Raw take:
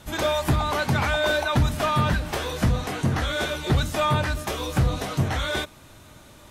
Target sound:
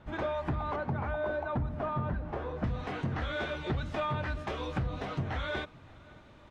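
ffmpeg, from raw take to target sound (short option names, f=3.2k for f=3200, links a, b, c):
-filter_complex "[0:a]asetnsamples=n=441:p=0,asendcmd='0.76 lowpass f 1100;2.64 lowpass f 2800',lowpass=1.8k,acompressor=threshold=-23dB:ratio=6,asplit=2[a][b];[b]adelay=565.6,volume=-23dB,highshelf=f=4k:g=-12.7[c];[a][c]amix=inputs=2:normalize=0,volume=-6dB"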